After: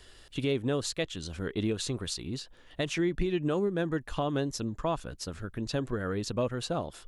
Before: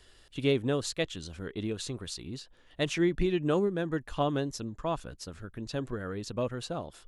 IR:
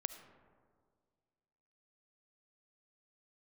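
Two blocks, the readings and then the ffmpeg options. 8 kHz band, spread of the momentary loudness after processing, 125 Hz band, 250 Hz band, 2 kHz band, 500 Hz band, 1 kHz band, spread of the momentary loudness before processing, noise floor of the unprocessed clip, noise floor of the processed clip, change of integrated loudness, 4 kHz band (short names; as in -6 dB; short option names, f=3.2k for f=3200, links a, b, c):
+2.5 dB, 9 LU, +1.0 dB, 0.0 dB, 0.0 dB, -0.5 dB, 0.0 dB, 15 LU, -59 dBFS, -55 dBFS, 0.0 dB, +1.0 dB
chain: -af "alimiter=level_in=0.5dB:limit=-24dB:level=0:latency=1:release=330,volume=-0.5dB,volume=4.5dB"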